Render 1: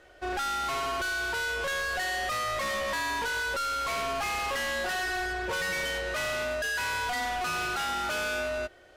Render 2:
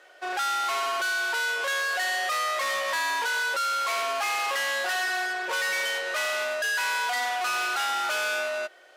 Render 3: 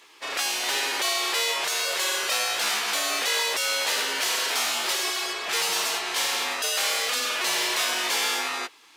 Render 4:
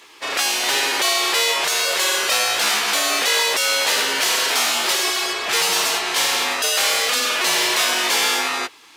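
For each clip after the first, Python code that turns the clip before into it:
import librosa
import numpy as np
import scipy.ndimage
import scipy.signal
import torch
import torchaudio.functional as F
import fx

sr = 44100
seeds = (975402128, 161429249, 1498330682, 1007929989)

y1 = scipy.signal.sosfilt(scipy.signal.butter(2, 600.0, 'highpass', fs=sr, output='sos'), x)
y1 = y1 * 10.0 ** (4.0 / 20.0)
y2 = fx.spec_gate(y1, sr, threshold_db=-15, keep='weak')
y2 = y2 * 10.0 ** (9.0 / 20.0)
y3 = scipy.signal.sosfilt(scipy.signal.butter(2, 74.0, 'highpass', fs=sr, output='sos'), y2)
y3 = fx.low_shelf(y3, sr, hz=160.0, db=8.0)
y3 = y3 * 10.0 ** (6.5 / 20.0)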